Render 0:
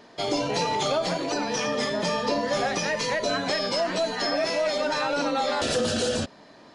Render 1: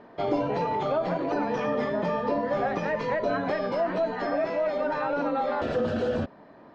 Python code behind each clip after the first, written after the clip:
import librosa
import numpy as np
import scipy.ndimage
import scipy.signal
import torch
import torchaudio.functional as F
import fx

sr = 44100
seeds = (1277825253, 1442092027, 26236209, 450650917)

y = scipy.signal.sosfilt(scipy.signal.butter(2, 1500.0, 'lowpass', fs=sr, output='sos'), x)
y = fx.rider(y, sr, range_db=10, speed_s=0.5)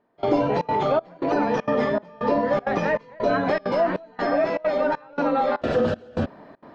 y = fx.step_gate(x, sr, bpm=197, pattern='...xxxxx.xxxx', floor_db=-24.0, edge_ms=4.5)
y = y * 10.0 ** (5.5 / 20.0)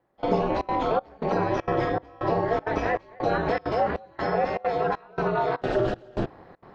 y = x * np.sin(2.0 * np.pi * 110.0 * np.arange(len(x)) / sr)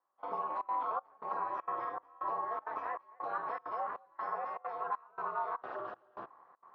y = fx.bandpass_q(x, sr, hz=1100.0, q=6.1)